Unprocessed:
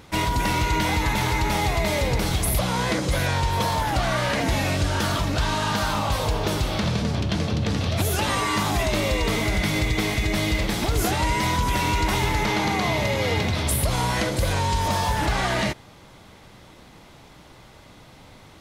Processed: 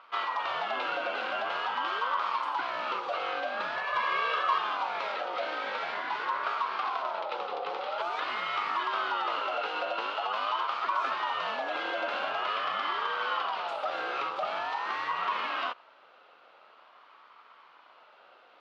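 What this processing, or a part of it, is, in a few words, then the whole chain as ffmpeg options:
voice changer toy: -filter_complex "[0:a]aeval=exprs='val(0)*sin(2*PI*830*n/s+830*0.25/0.46*sin(2*PI*0.46*n/s))':c=same,highpass=590,equalizer=f=810:t=q:w=4:g=-4,equalizer=f=1300:t=q:w=4:g=7,equalizer=f=1800:t=q:w=4:g=-6,lowpass=f=3500:w=0.5412,lowpass=f=3500:w=1.3066,asettb=1/sr,asplit=3[s0][s1][s2];[s0]atrim=end=3.764[s3];[s1]atrim=start=3.76:end=4.58,asetpts=PTS-STARTPTS,afade=t=in:d=0.004:c=qsin,afade=t=out:st=0.816:d=0.004:c=qsin,aecho=1:1:1.8:0.85,atrim=end_sample=36162[s4];[s2]atrim=start=4.576[s5];[s3][s4]acrossfade=d=0.004:c1=hsin:c2=qsin[s6];[s6][s5]acrossfade=d=0.004:c1=qsin:c2=hsin,volume=0.596"

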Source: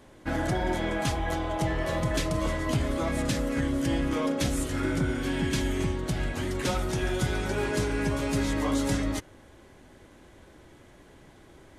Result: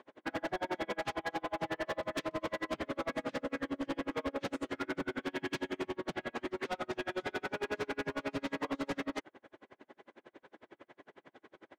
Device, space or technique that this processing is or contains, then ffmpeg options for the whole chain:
helicopter radio: -af "highpass=330,lowpass=2700,aeval=exprs='val(0)*pow(10,-39*(0.5-0.5*cos(2*PI*11*n/s))/20)':c=same,asoftclip=type=hard:threshold=0.015,volume=1.88"

